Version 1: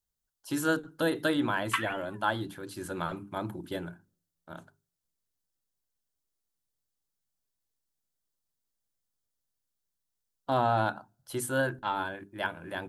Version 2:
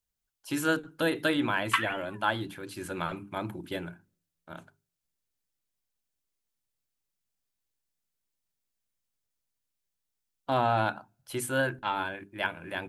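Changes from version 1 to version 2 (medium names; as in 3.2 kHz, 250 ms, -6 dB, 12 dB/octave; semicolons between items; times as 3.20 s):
speech: add peaking EQ 2.4 kHz +9 dB 0.59 oct; background +3.5 dB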